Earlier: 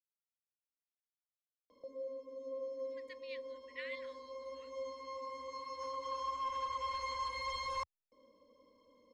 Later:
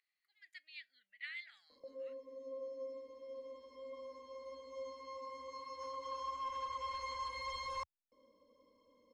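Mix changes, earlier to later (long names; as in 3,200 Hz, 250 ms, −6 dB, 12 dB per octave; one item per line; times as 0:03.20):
speech: entry −2.55 s
background −3.0 dB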